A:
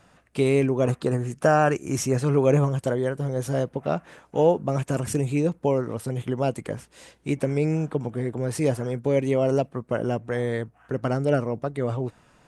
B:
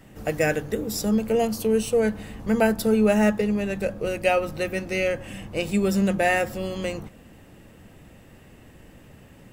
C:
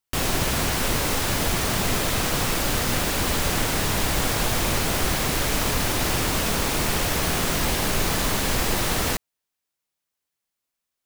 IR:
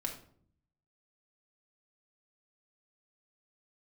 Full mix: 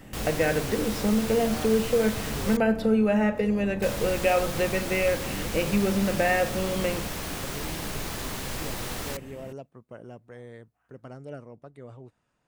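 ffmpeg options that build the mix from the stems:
-filter_complex "[0:a]volume=0.126[s0];[1:a]acrossover=split=3700[s1][s2];[s2]acompressor=threshold=0.00224:ratio=4:attack=1:release=60[s3];[s1][s3]amix=inputs=2:normalize=0,volume=1.12,asplit=2[s4][s5];[s5]volume=0.299[s6];[2:a]volume=0.299,asplit=3[s7][s8][s9];[s7]atrim=end=2.57,asetpts=PTS-STARTPTS,afade=t=out:st=2.566:d=0.004:c=hsin[s10];[s8]atrim=start=2.57:end=3.82,asetpts=PTS-STARTPTS,volume=0[s11];[s9]atrim=start=3.82,asetpts=PTS-STARTPTS,afade=t=in:d=0.004:c=hsin[s12];[s10][s11][s12]concat=n=3:v=0:a=1[s13];[s0][s4]amix=inputs=2:normalize=0,acompressor=threshold=0.0562:ratio=6,volume=1[s14];[3:a]atrim=start_sample=2205[s15];[s6][s15]afir=irnorm=-1:irlink=0[s16];[s13][s14][s16]amix=inputs=3:normalize=0"

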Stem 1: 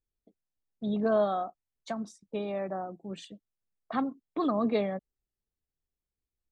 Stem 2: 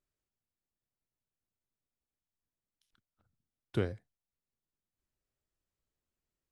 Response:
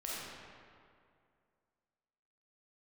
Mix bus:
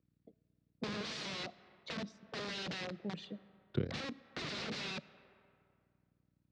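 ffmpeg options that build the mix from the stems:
-filter_complex "[0:a]adynamicequalizer=threshold=0.00447:dfrequency=570:dqfactor=6:tfrequency=570:tqfactor=6:attack=5:release=100:ratio=0.375:range=3.5:mode=boostabove:tftype=bell,aeval=exprs='(mod(35.5*val(0)+1,2)-1)/35.5':c=same,volume=1.06,asplit=2[s0][s1];[s1]volume=0.0841[s2];[1:a]aeval=exprs='val(0)+0.000316*(sin(2*PI*60*n/s)+sin(2*PI*2*60*n/s)/2+sin(2*PI*3*60*n/s)/3+sin(2*PI*4*60*n/s)/4+sin(2*PI*5*60*n/s)/5)':c=same,tremolo=f=36:d=0.974,volume=1.33[s3];[2:a]atrim=start_sample=2205[s4];[s2][s4]afir=irnorm=-1:irlink=0[s5];[s0][s3][s5]amix=inputs=3:normalize=0,acrossover=split=310|3000[s6][s7][s8];[s7]acompressor=threshold=0.00501:ratio=4[s9];[s6][s9][s8]amix=inputs=3:normalize=0,highpass=110,equalizer=f=150:t=q:w=4:g=5,equalizer=f=480:t=q:w=4:g=5,equalizer=f=880:t=q:w=4:g=-3,equalizer=f=3100:t=q:w=4:g=-4,lowpass=f=4400:w=0.5412,lowpass=f=4400:w=1.3066"

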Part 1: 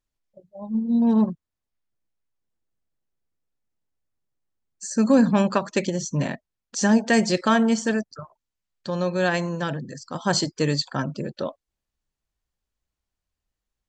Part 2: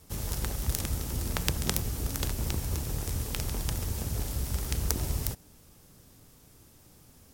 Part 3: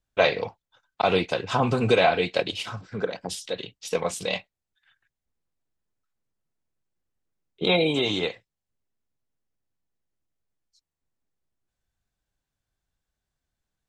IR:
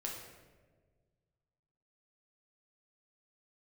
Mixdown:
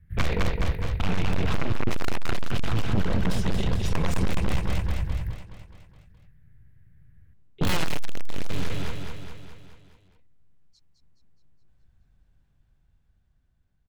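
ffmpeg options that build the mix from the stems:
-filter_complex "[1:a]firequalizer=gain_entry='entry(150,0);entry(250,-14);entry(490,-14);entry(900,-26);entry(1700,10);entry(2700,-9);entry(5900,-29);entry(11000,-8)':delay=0.05:min_phase=1,volume=0.316,asplit=2[s0][s1];[s1]volume=0.2[s2];[2:a]dynaudnorm=f=550:g=7:m=2.66,aeval=exprs='0.75*(cos(1*acos(clip(val(0)/0.75,-1,1)))-cos(1*PI/2))+0.0266*(cos(4*acos(clip(val(0)/0.75,-1,1)))-cos(4*PI/2))+0.188*(cos(6*acos(clip(val(0)/0.75,-1,1)))-cos(6*PI/2))+0.188*(cos(7*acos(clip(val(0)/0.75,-1,1)))-cos(7*PI/2))':c=same,aeval=exprs='0.237*(abs(mod(val(0)/0.237+3,4)-2)-1)':c=same,volume=1.33,asplit=2[s3][s4];[s4]volume=0.447[s5];[s0][s3]amix=inputs=2:normalize=0,alimiter=limit=0.168:level=0:latency=1,volume=1[s6];[3:a]atrim=start_sample=2205[s7];[s2][s7]afir=irnorm=-1:irlink=0[s8];[s5]aecho=0:1:210|420|630|840|1050|1260|1470|1680|1890:1|0.58|0.336|0.195|0.113|0.0656|0.0381|0.0221|0.0128[s9];[s6][s8][s9]amix=inputs=3:normalize=0,bass=f=250:g=13,treble=f=4000:g=-11,volume=6.68,asoftclip=hard,volume=0.15"

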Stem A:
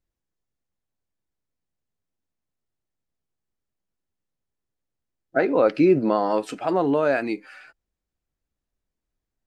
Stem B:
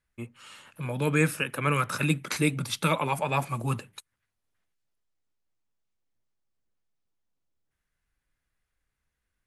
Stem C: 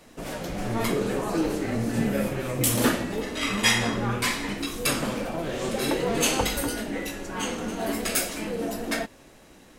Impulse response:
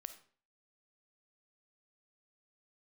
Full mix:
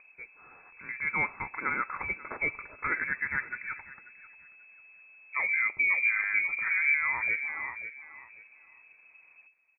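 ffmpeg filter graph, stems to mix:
-filter_complex "[0:a]acompressor=mode=upward:threshold=0.0224:ratio=2.5,volume=0.668,asplit=3[s0][s1][s2];[s1]volume=0.0794[s3];[s2]volume=0.224[s4];[1:a]highpass=f=320:w=0.5412,highpass=f=320:w=1.3066,volume=0.596,asplit=3[s5][s6][s7];[s6]volume=0.299[s8];[s7]volume=0.141[s9];[s0]asuperstop=centerf=680:order=4:qfactor=4.7,alimiter=limit=0.0794:level=0:latency=1:release=322,volume=1[s10];[3:a]atrim=start_sample=2205[s11];[s3][s8]amix=inputs=2:normalize=0[s12];[s12][s11]afir=irnorm=-1:irlink=0[s13];[s4][s9]amix=inputs=2:normalize=0,aecho=0:1:538|1076|1614|2152:1|0.23|0.0529|0.0122[s14];[s5][s10][s13][s14]amix=inputs=4:normalize=0,equalizer=f=220:t=o:w=0.71:g=6.5,lowpass=f=2200:t=q:w=0.5098,lowpass=f=2200:t=q:w=0.6013,lowpass=f=2200:t=q:w=0.9,lowpass=f=2200:t=q:w=2.563,afreqshift=-2600"

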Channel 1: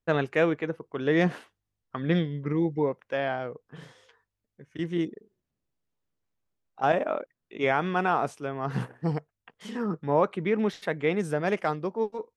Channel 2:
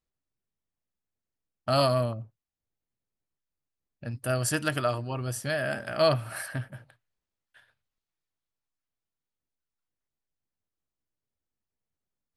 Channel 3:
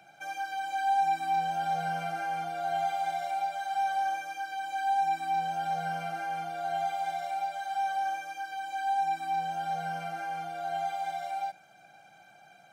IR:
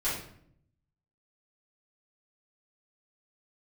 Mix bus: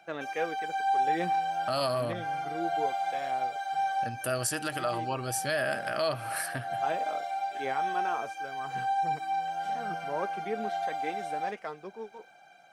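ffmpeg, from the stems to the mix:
-filter_complex "[0:a]flanger=delay=3.3:depth=5.7:regen=46:speed=0.18:shape=triangular,volume=0.501[s0];[1:a]alimiter=limit=0.0841:level=0:latency=1:release=127,volume=1.26,asplit=2[s1][s2];[2:a]highshelf=f=8100:g=-10,volume=1[s3];[s2]apad=whole_len=560969[s4];[s3][s4]sidechaincompress=threshold=0.0126:ratio=8:attack=16:release=125[s5];[s0][s1][s5]amix=inputs=3:normalize=0,bass=f=250:g=-9,treble=f=4000:g=2"

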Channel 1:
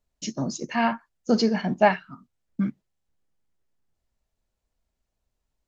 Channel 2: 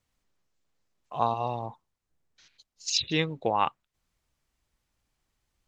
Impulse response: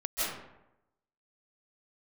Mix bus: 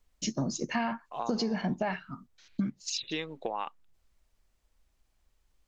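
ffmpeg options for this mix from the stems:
-filter_complex "[0:a]lowshelf=f=67:g=11,alimiter=limit=0.188:level=0:latency=1,volume=1,asplit=2[s0][s1];[1:a]highpass=250,acompressor=threshold=0.0355:ratio=6,volume=0.944[s2];[s1]apad=whole_len=250297[s3];[s2][s3]sidechaincompress=threshold=0.0631:ratio=8:attack=6.5:release=799[s4];[s0][s4]amix=inputs=2:normalize=0,acompressor=threshold=0.0447:ratio=6"

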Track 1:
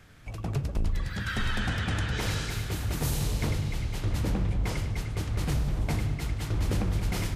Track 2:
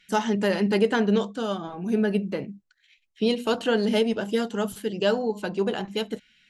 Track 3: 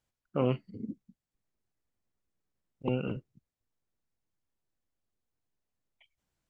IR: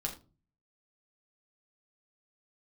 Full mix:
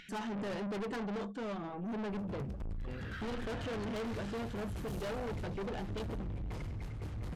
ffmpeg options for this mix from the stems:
-filter_complex "[0:a]adelay=1850,volume=0.473[s0];[1:a]lowpass=10000,aeval=exprs='(tanh(10*val(0)+0.65)-tanh(0.65))/10':c=same,volume=1.06[s1];[2:a]equalizer=f=2100:w=2:g=12,volume=0.266[s2];[s0][s1][s2]amix=inputs=3:normalize=0,highshelf=f=2600:g=-10.5,asoftclip=type=tanh:threshold=0.0158,acompressor=mode=upward:threshold=0.00562:ratio=2.5"

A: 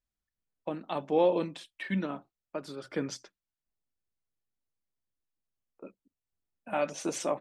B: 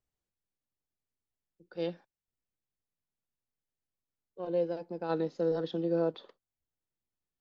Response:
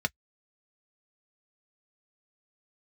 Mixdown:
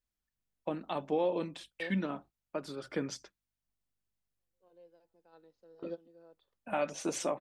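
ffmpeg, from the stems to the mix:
-filter_complex "[0:a]volume=0.944,asplit=2[s0][s1];[1:a]lowshelf=f=340:g=-12,aeval=exprs='val(0)+0.000316*(sin(2*PI*50*n/s)+sin(2*PI*2*50*n/s)/2+sin(2*PI*3*50*n/s)/3+sin(2*PI*4*50*n/s)/4+sin(2*PI*5*50*n/s)/5)':c=same,volume=0.596,asplit=2[s2][s3];[s3]volume=0.0944[s4];[s1]apad=whole_len=326525[s5];[s2][s5]sidechaingate=range=0.00158:threshold=0.00251:ratio=16:detection=peak[s6];[s4]aecho=0:1:234:1[s7];[s0][s6][s7]amix=inputs=3:normalize=0,alimiter=limit=0.0841:level=0:latency=1:release=452"

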